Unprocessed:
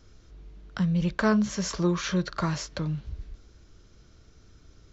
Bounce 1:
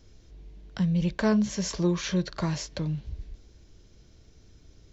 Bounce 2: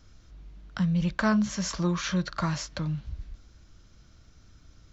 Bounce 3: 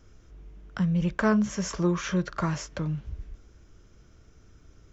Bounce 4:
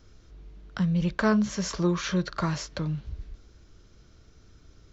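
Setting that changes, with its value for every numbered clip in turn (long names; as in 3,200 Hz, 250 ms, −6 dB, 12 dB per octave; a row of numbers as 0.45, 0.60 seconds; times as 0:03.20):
parametric band, centre frequency: 1,300, 410, 4,200, 12,000 Hertz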